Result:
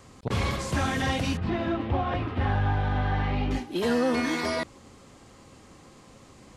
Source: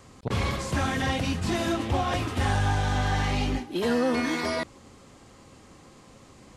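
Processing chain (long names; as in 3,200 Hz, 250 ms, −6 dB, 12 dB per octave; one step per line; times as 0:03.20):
0:01.37–0:03.51: high-frequency loss of the air 370 metres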